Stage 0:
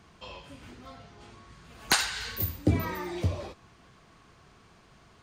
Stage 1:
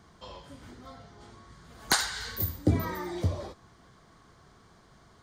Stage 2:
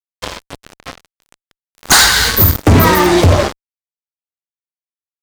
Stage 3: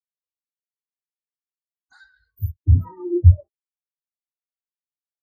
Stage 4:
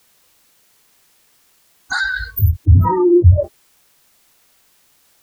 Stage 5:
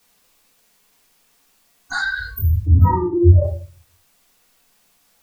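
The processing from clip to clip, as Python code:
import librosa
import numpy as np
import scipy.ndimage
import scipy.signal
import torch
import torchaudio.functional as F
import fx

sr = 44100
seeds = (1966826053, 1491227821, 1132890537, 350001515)

y1 = fx.peak_eq(x, sr, hz=2600.0, db=-13.5, octaves=0.3)
y2 = fx.fuzz(y1, sr, gain_db=36.0, gate_db=-41.0)
y2 = y2 * librosa.db_to_amplitude(8.5)
y3 = fx.spectral_expand(y2, sr, expansion=4.0)
y4 = fx.env_flatten(y3, sr, amount_pct=70)
y5 = fx.room_shoebox(y4, sr, seeds[0], volume_m3=190.0, walls='furnished', distance_m=1.8)
y5 = y5 * librosa.db_to_amplitude(-6.5)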